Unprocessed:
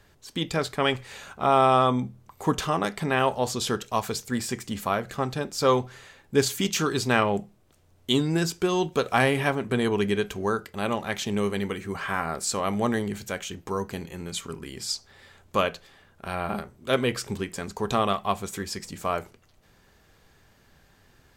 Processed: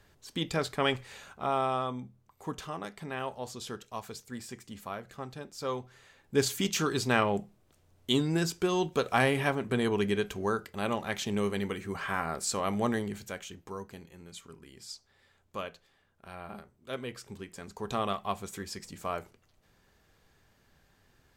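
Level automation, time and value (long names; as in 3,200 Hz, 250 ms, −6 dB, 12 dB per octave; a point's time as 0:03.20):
0:00.93 −4 dB
0:01.94 −13 dB
0:05.84 −13 dB
0:06.44 −4 dB
0:12.88 −4 dB
0:14.10 −14 dB
0:17.23 −14 dB
0:18.06 −7 dB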